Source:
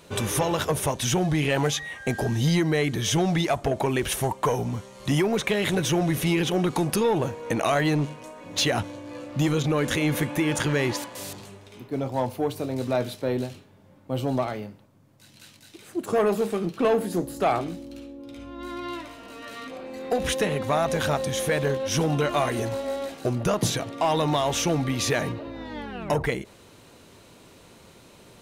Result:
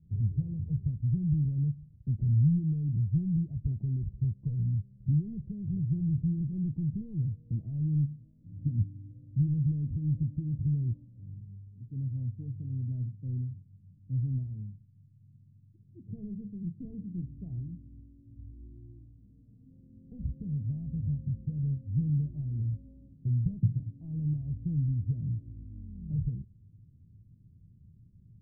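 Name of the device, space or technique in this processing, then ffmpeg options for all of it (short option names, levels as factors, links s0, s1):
the neighbour's flat through the wall: -filter_complex "[0:a]lowpass=f=160:w=0.5412,lowpass=f=160:w=1.3066,equalizer=f=100:t=o:w=0.87:g=4.5,asettb=1/sr,asplit=3[s0][s1][s2];[s0]atrim=end=8.664[s3];[s1]atrim=start=8.66:end=9.11,asetpts=PTS-STARTPTS,afade=t=in:d=0.004:c=qsin,afade=t=out:st=0.446:d=0.004:c=qsin,equalizer=f=250:t=o:w=1:g=8,equalizer=f=500:t=o:w=1:g=-7,equalizer=f=1000:t=o:w=1:g=-10[s4];[s2]atrim=start=9.106[s5];[s3][s4]acrossfade=d=0.004:c1=hsin:c2=qsin[s6];[s6][s5]acrossfade=d=0.004:c1=qsin:c2=hsin"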